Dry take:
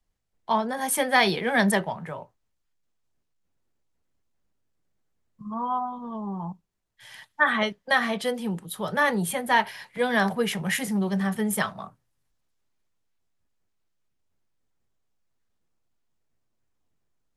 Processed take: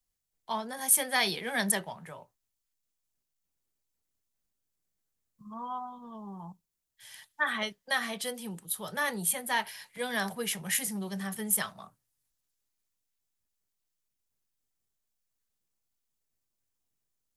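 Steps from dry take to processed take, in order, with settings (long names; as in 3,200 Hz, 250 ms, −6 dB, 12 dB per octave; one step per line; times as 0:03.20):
first-order pre-emphasis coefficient 0.8
level +3 dB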